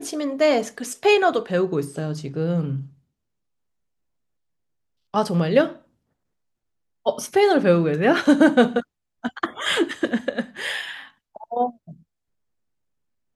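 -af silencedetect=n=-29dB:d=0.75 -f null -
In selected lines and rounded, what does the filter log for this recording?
silence_start: 2.82
silence_end: 5.14 | silence_duration: 2.32
silence_start: 5.72
silence_end: 7.06 | silence_duration: 1.34
silence_start: 11.70
silence_end: 13.35 | silence_duration: 1.65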